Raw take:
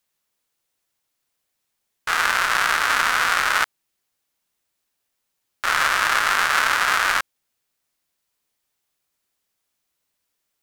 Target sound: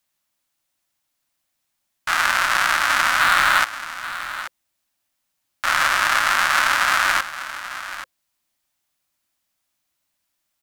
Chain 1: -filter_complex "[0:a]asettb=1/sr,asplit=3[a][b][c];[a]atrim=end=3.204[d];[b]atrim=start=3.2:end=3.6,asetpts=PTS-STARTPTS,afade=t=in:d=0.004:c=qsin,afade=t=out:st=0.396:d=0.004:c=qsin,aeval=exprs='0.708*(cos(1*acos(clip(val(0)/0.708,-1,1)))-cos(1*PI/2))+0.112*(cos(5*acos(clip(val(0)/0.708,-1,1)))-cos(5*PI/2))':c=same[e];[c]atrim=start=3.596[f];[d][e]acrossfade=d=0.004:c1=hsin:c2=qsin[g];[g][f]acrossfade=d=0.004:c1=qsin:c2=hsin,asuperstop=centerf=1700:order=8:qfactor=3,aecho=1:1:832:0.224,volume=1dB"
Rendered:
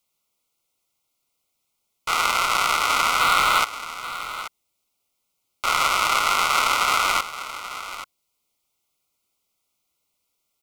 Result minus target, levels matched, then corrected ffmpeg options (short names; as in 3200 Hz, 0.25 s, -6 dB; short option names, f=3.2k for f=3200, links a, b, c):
2000 Hz band -4.5 dB
-filter_complex "[0:a]asettb=1/sr,asplit=3[a][b][c];[a]atrim=end=3.204[d];[b]atrim=start=3.2:end=3.6,asetpts=PTS-STARTPTS,afade=t=in:d=0.004:c=qsin,afade=t=out:st=0.396:d=0.004:c=qsin,aeval=exprs='0.708*(cos(1*acos(clip(val(0)/0.708,-1,1)))-cos(1*PI/2))+0.112*(cos(5*acos(clip(val(0)/0.708,-1,1)))-cos(5*PI/2))':c=same[e];[c]atrim=start=3.596[f];[d][e]acrossfade=d=0.004:c1=hsin:c2=qsin[g];[g][f]acrossfade=d=0.004:c1=qsin:c2=hsin,asuperstop=centerf=440:order=8:qfactor=3,aecho=1:1:832:0.224,volume=1dB"